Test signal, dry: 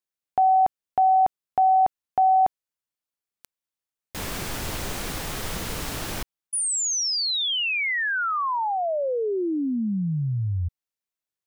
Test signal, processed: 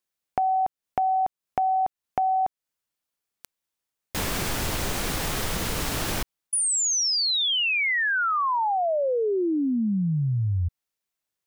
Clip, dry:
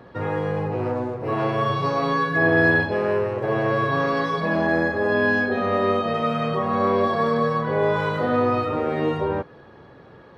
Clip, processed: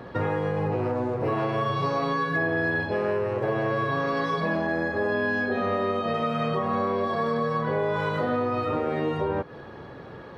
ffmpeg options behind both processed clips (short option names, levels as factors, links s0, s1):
-af "acompressor=threshold=0.0447:ratio=6:attack=9.3:release=317:knee=1:detection=rms,volume=1.78"